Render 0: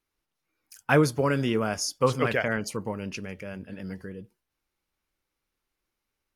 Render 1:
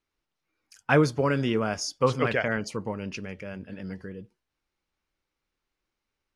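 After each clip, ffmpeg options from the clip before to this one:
-af "lowpass=6.5k"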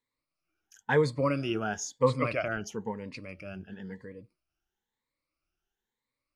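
-af "afftfilt=real='re*pow(10,15/40*sin(2*PI*(1*log(max(b,1)*sr/1024/100)/log(2)-(1)*(pts-256)/sr)))':imag='im*pow(10,15/40*sin(2*PI*(1*log(max(b,1)*sr/1024/100)/log(2)-(1)*(pts-256)/sr)))':win_size=1024:overlap=0.75,volume=-7dB"

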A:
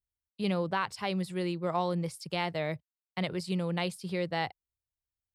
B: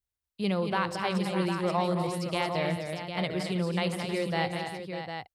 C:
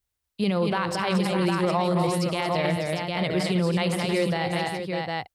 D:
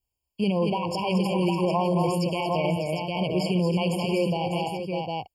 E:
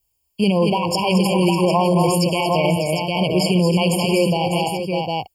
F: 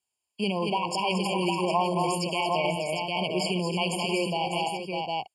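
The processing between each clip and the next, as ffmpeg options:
-af "aecho=1:1:73|183|225|317|599|754:0.112|0.119|0.447|0.266|0.316|0.422,volume=1.5dB"
-af "alimiter=limit=-22dB:level=0:latency=1:release=35,volume=7.5dB"
-af "afftfilt=real='re*eq(mod(floor(b*sr/1024/1100),2),0)':imag='im*eq(mod(floor(b*sr/1024/1100),2),0)':win_size=1024:overlap=0.75"
-af "highshelf=f=5.4k:g=10,volume=7dB"
-af "highpass=270,equalizer=f=300:t=q:w=4:g=-6,equalizer=f=510:t=q:w=4:g=-8,equalizer=f=5.7k:t=q:w=4:g=-9,lowpass=f=9.1k:w=0.5412,lowpass=f=9.1k:w=1.3066,volume=-5dB"

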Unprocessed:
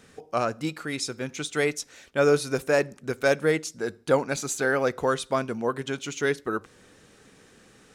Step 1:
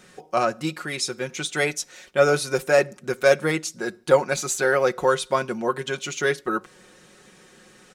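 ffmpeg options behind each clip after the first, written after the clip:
-af "lowshelf=f=220:g=-5.5,aecho=1:1:5.5:0.63,volume=3dB"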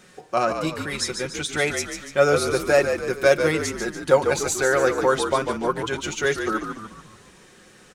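-filter_complex "[0:a]asplit=7[a][b][c][d][e][f][g];[b]adelay=145,afreqshift=-54,volume=-7dB[h];[c]adelay=290,afreqshift=-108,volume=-13.4dB[i];[d]adelay=435,afreqshift=-162,volume=-19.8dB[j];[e]adelay=580,afreqshift=-216,volume=-26.1dB[k];[f]adelay=725,afreqshift=-270,volume=-32.5dB[l];[g]adelay=870,afreqshift=-324,volume=-38.9dB[m];[a][h][i][j][k][l][m]amix=inputs=7:normalize=0"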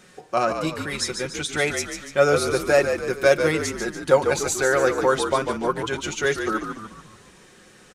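-af "aresample=32000,aresample=44100"

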